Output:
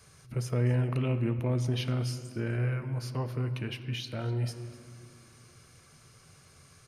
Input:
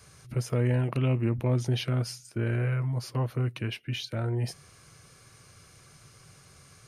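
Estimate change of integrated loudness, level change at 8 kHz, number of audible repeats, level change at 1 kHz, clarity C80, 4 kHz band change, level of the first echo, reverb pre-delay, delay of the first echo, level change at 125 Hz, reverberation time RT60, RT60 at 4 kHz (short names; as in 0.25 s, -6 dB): -2.0 dB, -3.0 dB, 1, -2.5 dB, 11.5 dB, -2.5 dB, -19.0 dB, 5 ms, 0.252 s, -2.0 dB, 2.5 s, 1.5 s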